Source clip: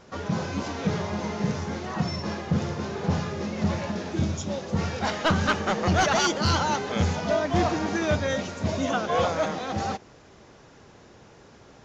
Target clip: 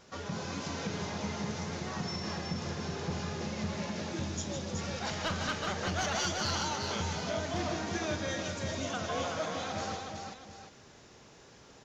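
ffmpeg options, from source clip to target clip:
-af "highshelf=f=2.5k:g=9,acompressor=threshold=-28dB:ratio=2,aecho=1:1:46|156|374|727:0.211|0.398|0.562|0.237,volume=-8dB"

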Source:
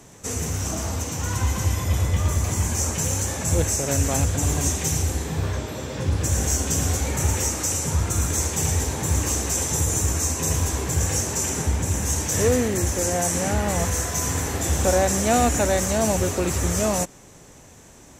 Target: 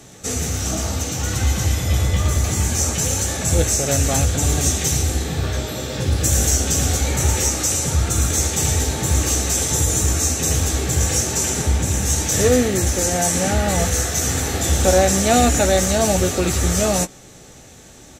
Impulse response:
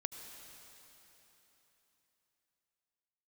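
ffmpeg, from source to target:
-filter_complex "[0:a]asettb=1/sr,asplit=3[a][b][c];[a]atrim=end=5.524[d];[b]atrim=start=5.52:end=6.5,asetpts=PTS-STARTPTS,afade=t=in:d=0.004:c=qsin,afade=t=out:st=0.976:d=0.004:c=qsin,highshelf=f=9k:g=8.5[e];[c]atrim=start=6.496[f];[d][e]acrossfade=d=0.004:c1=hsin:c2=qsin[g];[g][f]acrossfade=d=0.004:c1=qsin:c2=hsin,asuperstop=centerf=1000:order=8:qfactor=6.8,equalizer=f=3.9k:w=2.2:g=6,asplit=2[h][i];[i]adelay=16,volume=-10dB[j];[h][j]amix=inputs=2:normalize=0,volume=3.5dB"

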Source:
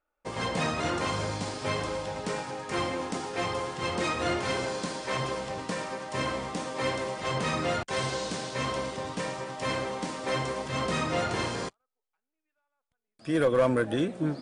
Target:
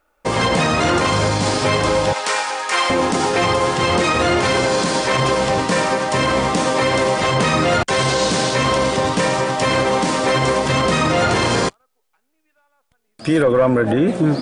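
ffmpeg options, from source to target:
-filter_complex "[0:a]asettb=1/sr,asplit=3[a][b][c];[a]atrim=end=2.134[d];[b]atrim=start=2.13:end=2.9,asetpts=PTS-STARTPTS,afade=t=in:d=0.004:c=qsin,afade=t=out:st=0.766:d=0.004:c=qsin,highpass=890[e];[c]atrim=start=2.896[f];[d][e]acrossfade=d=0.004:c1=hsin:c2=qsin[g];[g][f]acrossfade=d=0.004:c1=qsin:c2=hsin,asettb=1/sr,asplit=3[h][i][j];[h]atrim=end=13.424[k];[i]atrim=start=13.42:end=14.08,asetpts=PTS-STARTPTS,afade=t=in:d=0.004:c=qsin,afade=t=out:st=0.656:d=0.004:c=qsin,acrossover=split=2500[l][m];[m]acompressor=threshold=-58dB:ratio=4:attack=1:release=60[n];[l][n]amix=inputs=2:normalize=0[o];[j]atrim=start=14.076[p];[k][o]acrossfade=d=0.004:c1=hsin:c2=qsin[q];[q][p]acrossfade=d=0.004:c1=qsin:c2=hsin,alimiter=level_in=25dB:limit=-1dB:release=50:level=0:latency=1,volume=-7dB"

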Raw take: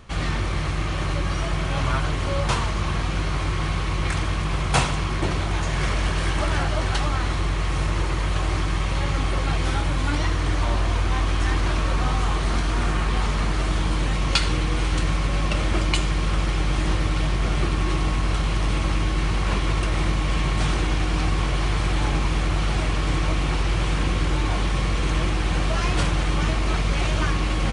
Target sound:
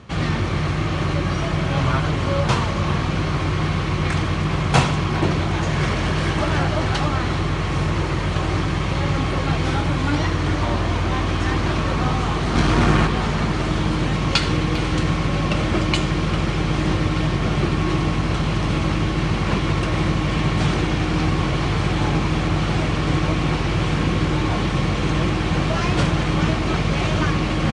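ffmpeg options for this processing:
-filter_complex "[0:a]lowshelf=f=390:g=7.5,asplit=3[a][b][c];[a]afade=t=out:st=12.55:d=0.02[d];[b]acontrast=56,afade=t=in:st=12.55:d=0.02,afade=t=out:st=13.06:d=0.02[e];[c]afade=t=in:st=13.06:d=0.02[f];[d][e][f]amix=inputs=3:normalize=0,highpass=110,lowpass=6.9k,asplit=2[g][h];[h]adelay=400,highpass=300,lowpass=3.4k,asoftclip=type=hard:threshold=-14dB,volume=-11dB[i];[g][i]amix=inputs=2:normalize=0,volume=2dB"

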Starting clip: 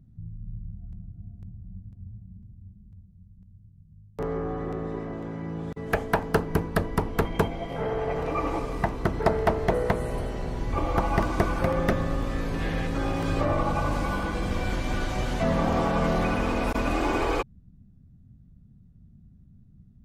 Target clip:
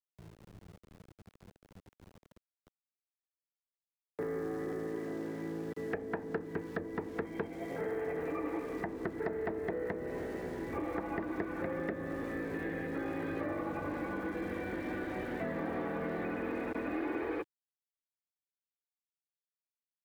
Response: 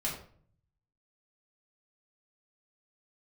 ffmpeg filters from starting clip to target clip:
-filter_complex "[0:a]highpass=120,equalizer=f=130:t=q:w=4:g=-9,equalizer=f=320:t=q:w=4:g=10,equalizer=f=460:t=q:w=4:g=7,equalizer=f=1.1k:t=q:w=4:g=-3,equalizer=f=1.8k:t=q:w=4:g=9,equalizer=f=3k:t=q:w=4:g=-7,lowpass=f=3.2k:w=0.5412,lowpass=f=3.2k:w=1.3066,aeval=exprs='val(0)*gte(abs(val(0)),0.00668)':c=same,acrossover=split=320|1100[a][b][c];[a]acompressor=threshold=-33dB:ratio=4[d];[b]acompressor=threshold=-33dB:ratio=4[e];[c]acompressor=threshold=-38dB:ratio=4[f];[d][e][f]amix=inputs=3:normalize=0,volume=-7dB"

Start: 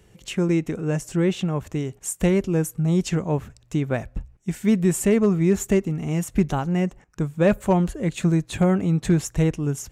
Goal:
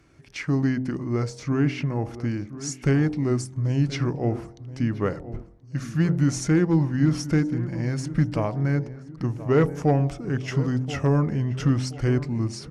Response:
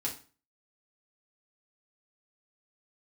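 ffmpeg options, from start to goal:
-filter_complex "[0:a]lowshelf=f=82:g=-11,bandreject=f=55.08:t=h:w=4,bandreject=f=110.16:t=h:w=4,bandreject=f=165.24:t=h:w=4,bandreject=f=220.32:t=h:w=4,bandreject=f=275.4:t=h:w=4,bandreject=f=330.48:t=h:w=4,bandreject=f=385.56:t=h:w=4,bandreject=f=440.64:t=h:w=4,bandreject=f=495.72:t=h:w=4,bandreject=f=550.8:t=h:w=4,bandreject=f=605.88:t=h:w=4,bandreject=f=660.96:t=h:w=4,bandreject=f=716.04:t=h:w=4,bandreject=f=771.12:t=h:w=4,bandreject=f=826.2:t=h:w=4,bandreject=f=881.28:t=h:w=4,bandreject=f=936.36:t=h:w=4,bandreject=f=991.44:t=h:w=4,bandreject=f=1.04652k:t=h:w=4,bandreject=f=1.1016k:t=h:w=4,bandreject=f=1.15668k:t=h:w=4,bandreject=f=1.21176k:t=h:w=4,acrossover=split=4500[a][b];[a]acontrast=52[c];[c][b]amix=inputs=2:normalize=0,asetrate=34398,aresample=44100,asplit=2[d][e];[e]adelay=1028,lowpass=f=1.5k:p=1,volume=-14dB,asplit=2[f][g];[g]adelay=1028,lowpass=f=1.5k:p=1,volume=0.39,asplit=2[h][i];[i]adelay=1028,lowpass=f=1.5k:p=1,volume=0.39,asplit=2[j][k];[k]adelay=1028,lowpass=f=1.5k:p=1,volume=0.39[l];[d][f][h][j][l]amix=inputs=5:normalize=0,volume=-5.5dB"

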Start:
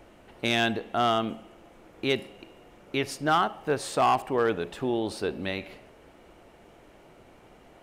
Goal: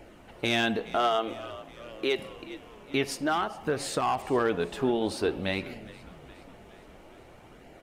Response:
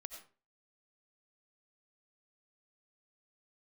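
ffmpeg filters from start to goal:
-filter_complex "[0:a]asettb=1/sr,asplit=3[a][b][c];[a]atrim=end=0.964[d];[b]atrim=start=0.96:end=2.19,asetpts=PTS-STARTPTS,afade=t=in:d=0.004:c=qsin,afade=t=out:st=1.226:d=0.004:c=qsin,lowshelf=f=270:t=q:w=1.5:g=-14[e];[c]atrim=start=2.186[f];[d][e]acrossfade=d=0.004:c1=hsin:c2=qsin[g];[g][f]acrossfade=d=0.004:c1=qsin:c2=hsin,asettb=1/sr,asplit=3[h][i][j];[h]atrim=end=3.114[k];[i]atrim=start=3.11:end=4.25,asetpts=PTS-STARTPTS,afade=t=in:d=0.004:c=qsin,afade=t=out:st=1.136:d=0.004:c=qsin,acompressor=threshold=-26dB:ratio=6[l];[j]atrim=start=4.246[m];[k][l]acrossfade=d=0.004:c1=hsin:c2=qsin[n];[n][m]acrossfade=d=0.004:c1=qsin:c2=hsin,asplit=6[o][p][q][r][s][t];[p]adelay=413,afreqshift=-65,volume=-20dB[u];[q]adelay=826,afreqshift=-130,volume=-24.2dB[v];[r]adelay=1239,afreqshift=-195,volume=-28.3dB[w];[s]adelay=1652,afreqshift=-260,volume=-32.5dB[x];[t]adelay=2065,afreqshift=-325,volume=-36.6dB[y];[o][u][v][w][x][y]amix=inputs=6:normalize=0,flanger=delay=0.4:depth=4.4:regen=-53:speed=0.52:shape=sinusoidal,alimiter=limit=-22dB:level=0:latency=1:release=115,volume=6dB"

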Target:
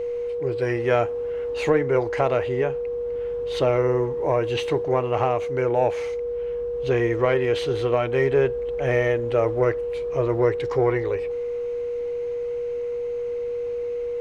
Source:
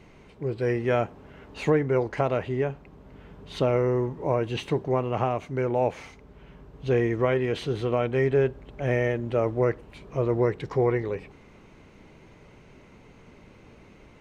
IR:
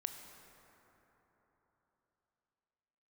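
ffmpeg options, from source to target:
-af "acontrast=86,aeval=exprs='val(0)+0.0891*sin(2*PI*480*n/s)':c=same,equalizer=f=190:w=1.8:g=-14,volume=-2.5dB"

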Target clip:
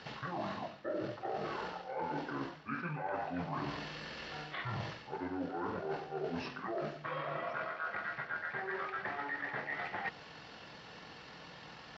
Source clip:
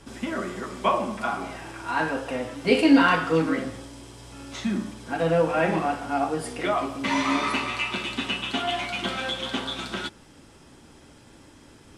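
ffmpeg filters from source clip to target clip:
-filter_complex "[0:a]asetrate=24046,aresample=44100,atempo=1.83401,acrossover=split=3700[a][b];[b]acompressor=threshold=-57dB:ratio=4:attack=1:release=60[c];[a][c]amix=inputs=2:normalize=0,highpass=f=890:p=1,areverse,acompressor=threshold=-44dB:ratio=16,areverse,aemphasis=mode=reproduction:type=50kf,volume=9dB"

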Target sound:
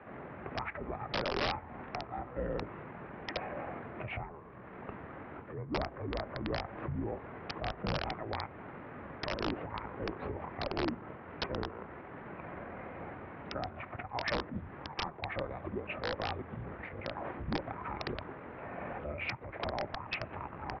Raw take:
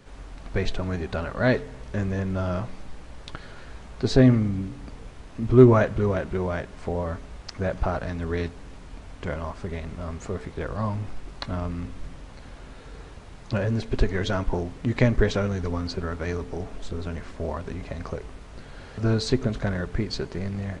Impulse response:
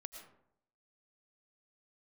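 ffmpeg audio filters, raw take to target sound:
-af "asetrate=29433,aresample=44100,atempo=1.49831,acompressor=threshold=-30dB:ratio=8,highpass=f=420:t=q:w=0.5412,highpass=f=420:t=q:w=1.307,lowpass=f=2.5k:t=q:w=0.5176,lowpass=f=2.5k:t=q:w=0.7071,lowpass=f=2.5k:t=q:w=1.932,afreqshift=-380,highpass=78,aresample=11025,aeval=exprs='(mod(53.1*val(0)+1,2)-1)/53.1':c=same,aresample=44100,volume=9dB"

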